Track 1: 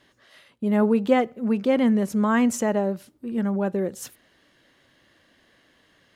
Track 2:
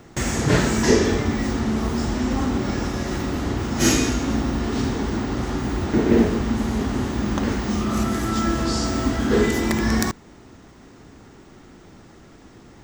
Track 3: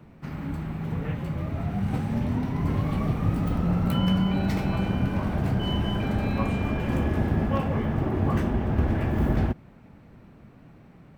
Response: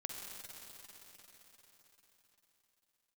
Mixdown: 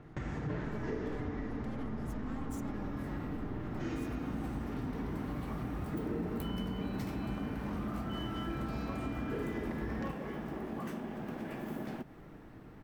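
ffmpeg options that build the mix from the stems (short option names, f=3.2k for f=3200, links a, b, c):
-filter_complex "[0:a]agate=range=-33dB:threshold=-55dB:ratio=3:detection=peak,equalizer=f=1.9k:t=o:w=2.8:g=-10,aeval=exprs='max(val(0),0)':c=same,volume=-2dB,asplit=2[a][b];[1:a]lowpass=1.6k,aecho=1:1:6.6:0.34,volume=-6dB,asplit=2[c][d];[d]volume=-6dB[e];[2:a]highpass=f=170:w=0.5412,highpass=f=170:w=1.3066,aemphasis=mode=production:type=cd,adelay=2500,volume=-8.5dB,asplit=2[f][g];[g]volume=-17dB[h];[b]apad=whole_len=602952[i];[f][i]sidechaincompress=threshold=-34dB:ratio=8:attack=16:release=371[j];[a][c]amix=inputs=2:normalize=0,equalizer=f=580:t=o:w=2.6:g=-9.5,alimiter=level_in=3.5dB:limit=-24dB:level=0:latency=1:release=161,volume=-3.5dB,volume=0dB[k];[3:a]atrim=start_sample=2205[l];[e][h]amix=inputs=2:normalize=0[m];[m][l]afir=irnorm=-1:irlink=0[n];[j][k][n]amix=inputs=3:normalize=0,acompressor=threshold=-40dB:ratio=2"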